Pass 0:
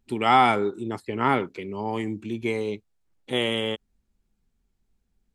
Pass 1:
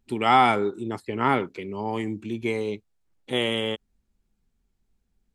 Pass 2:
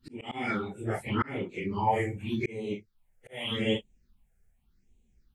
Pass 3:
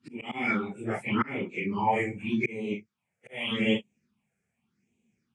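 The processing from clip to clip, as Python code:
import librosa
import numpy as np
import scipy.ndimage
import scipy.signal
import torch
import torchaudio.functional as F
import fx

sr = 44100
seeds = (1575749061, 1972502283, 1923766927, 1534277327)

y1 = x
y2 = fx.phase_scramble(y1, sr, seeds[0], window_ms=100)
y2 = fx.auto_swell(y2, sr, attack_ms=582.0)
y2 = fx.phaser_stages(y2, sr, stages=6, low_hz=260.0, high_hz=1400.0, hz=0.85, feedback_pct=25)
y2 = F.gain(torch.from_numpy(y2), 5.0).numpy()
y3 = fx.cabinet(y2, sr, low_hz=120.0, low_slope=24, high_hz=9100.0, hz=(220.0, 1100.0, 2400.0, 4100.0), db=(5, 3, 9, -8))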